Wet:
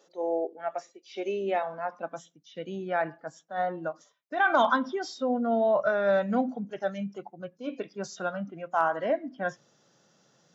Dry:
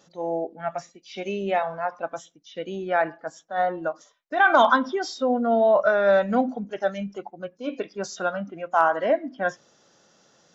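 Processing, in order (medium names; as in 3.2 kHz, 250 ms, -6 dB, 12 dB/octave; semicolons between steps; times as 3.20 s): high-pass sweep 400 Hz -> 130 Hz, 1.00–2.59 s; trim -6 dB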